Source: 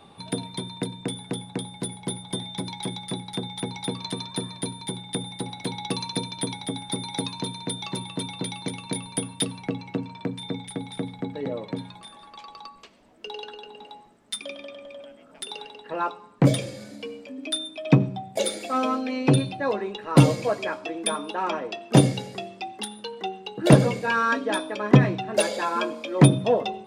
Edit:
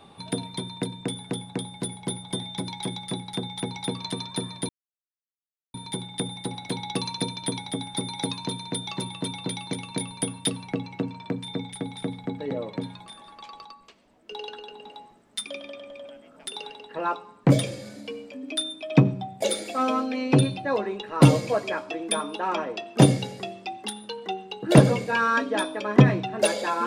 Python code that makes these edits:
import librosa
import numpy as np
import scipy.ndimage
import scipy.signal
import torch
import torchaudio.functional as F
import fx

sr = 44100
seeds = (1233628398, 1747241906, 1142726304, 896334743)

y = fx.edit(x, sr, fx.insert_silence(at_s=4.69, length_s=1.05),
    fx.clip_gain(start_s=12.6, length_s=0.66, db=-4.0), tone=tone)